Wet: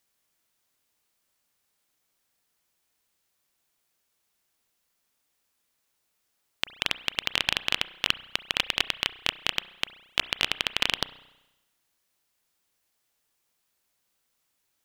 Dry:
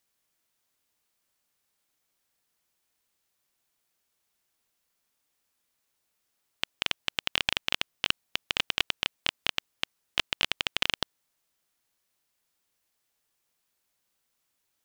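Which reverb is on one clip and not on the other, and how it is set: spring tank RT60 1 s, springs 32 ms, chirp 40 ms, DRR 15 dB; gain +2 dB

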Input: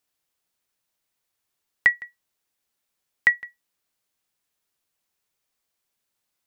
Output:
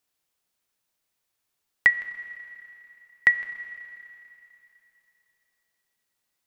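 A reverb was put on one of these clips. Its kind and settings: Schroeder reverb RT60 3.1 s, combs from 28 ms, DRR 13 dB

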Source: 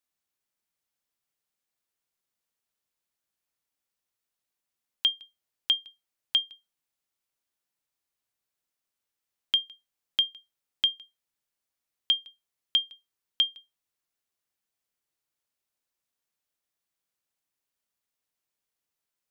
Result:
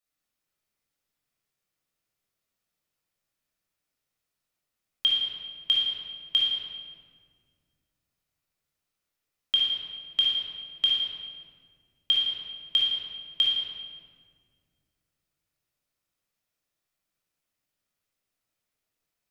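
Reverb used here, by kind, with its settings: shoebox room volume 3100 m³, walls mixed, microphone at 6.4 m; gain -5 dB

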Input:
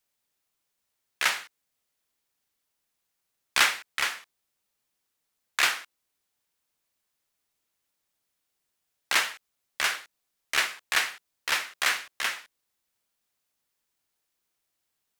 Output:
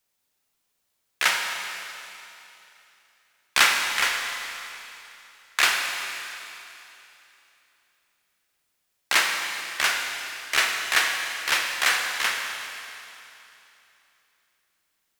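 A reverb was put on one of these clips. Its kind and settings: Schroeder reverb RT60 3 s, combs from 33 ms, DRR 2.5 dB; gain +3 dB

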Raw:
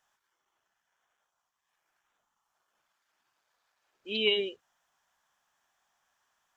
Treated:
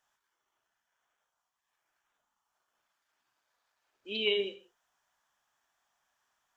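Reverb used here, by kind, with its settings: non-linear reverb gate 0.2 s falling, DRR 9 dB; gain -3 dB

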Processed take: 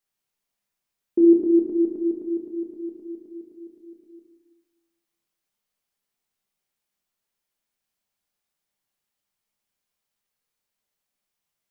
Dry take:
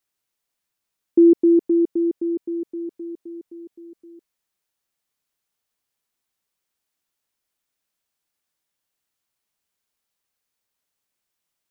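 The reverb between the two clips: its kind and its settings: shoebox room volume 330 m³, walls mixed, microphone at 1.3 m; gain -5 dB

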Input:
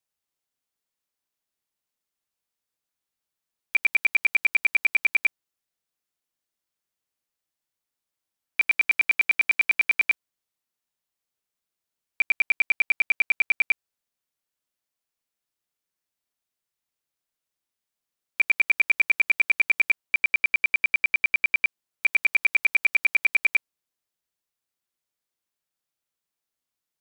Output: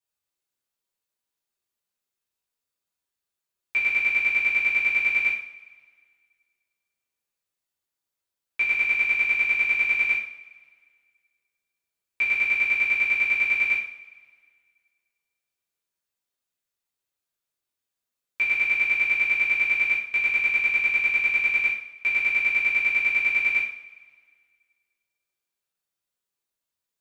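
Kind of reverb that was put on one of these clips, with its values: two-slope reverb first 0.5 s, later 1.9 s, from -20 dB, DRR -7.5 dB; gain -8.5 dB

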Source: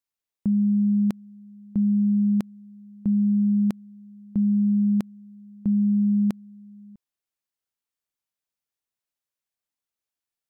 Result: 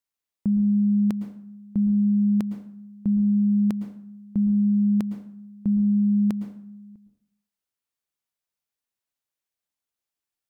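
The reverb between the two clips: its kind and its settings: plate-style reverb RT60 0.63 s, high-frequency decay 0.7×, pre-delay 0.1 s, DRR 9 dB

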